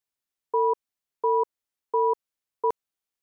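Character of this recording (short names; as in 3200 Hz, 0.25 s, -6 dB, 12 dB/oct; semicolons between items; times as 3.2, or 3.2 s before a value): noise floor -89 dBFS; spectral tilt +12.0 dB/oct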